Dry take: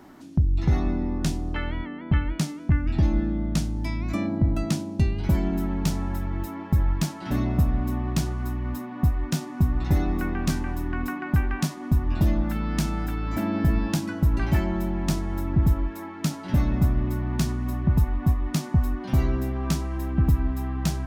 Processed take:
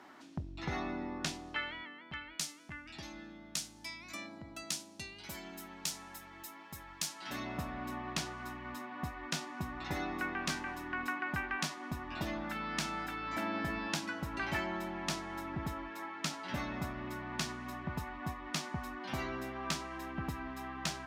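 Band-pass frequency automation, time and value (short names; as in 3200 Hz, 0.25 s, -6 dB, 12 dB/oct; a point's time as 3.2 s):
band-pass, Q 0.51
1.19 s 2100 Hz
2.12 s 7300 Hz
7.02 s 7300 Hz
7.62 s 2400 Hz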